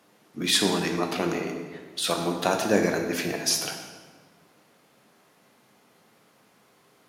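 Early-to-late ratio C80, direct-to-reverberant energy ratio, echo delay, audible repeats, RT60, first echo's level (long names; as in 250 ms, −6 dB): 7.0 dB, 3.0 dB, no echo audible, no echo audible, 1.5 s, no echo audible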